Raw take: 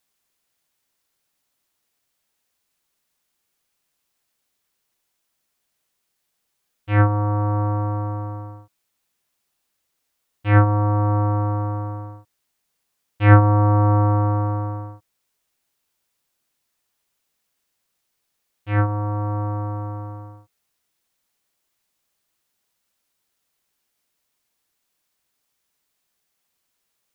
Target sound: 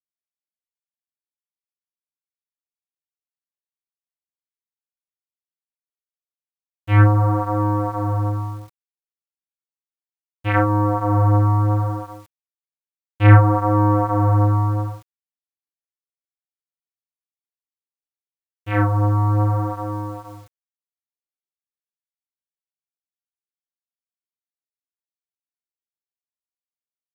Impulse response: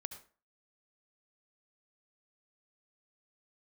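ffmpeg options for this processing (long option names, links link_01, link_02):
-af "acompressor=threshold=-24dB:ratio=1.5,flanger=delay=22.5:depth=7.4:speed=0.65,acrusher=bits=9:mix=0:aa=0.000001,volume=8.5dB"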